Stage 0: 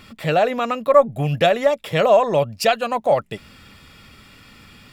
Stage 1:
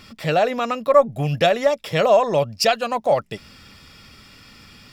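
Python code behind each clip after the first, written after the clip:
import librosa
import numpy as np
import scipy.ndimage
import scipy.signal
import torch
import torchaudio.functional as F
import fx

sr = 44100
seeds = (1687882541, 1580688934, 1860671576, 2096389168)

y = fx.peak_eq(x, sr, hz=5300.0, db=9.0, octaves=0.46)
y = F.gain(torch.from_numpy(y), -1.0).numpy()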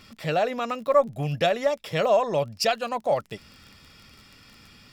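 y = fx.dmg_crackle(x, sr, seeds[0], per_s=22.0, level_db=-31.0)
y = F.gain(torch.from_numpy(y), -5.5).numpy()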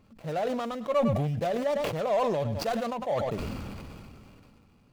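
y = scipy.ndimage.median_filter(x, 25, mode='constant')
y = fx.echo_feedback(y, sr, ms=103, feedback_pct=37, wet_db=-23.5)
y = fx.sustainer(y, sr, db_per_s=22.0)
y = F.gain(torch.from_numpy(y), -6.0).numpy()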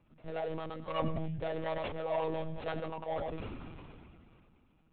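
y = fx.lpc_monotone(x, sr, seeds[1], pitch_hz=160.0, order=16)
y = F.gain(torch.from_numpy(y), -7.5).numpy()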